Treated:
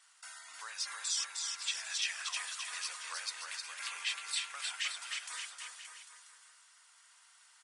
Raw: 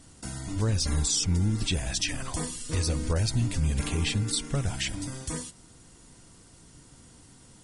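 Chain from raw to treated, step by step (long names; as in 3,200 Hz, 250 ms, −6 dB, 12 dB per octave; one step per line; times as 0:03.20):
high-pass filter 1,200 Hz 24 dB per octave
high-shelf EQ 3,600 Hz −11 dB
bouncing-ball delay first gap 310 ms, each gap 0.85×, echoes 5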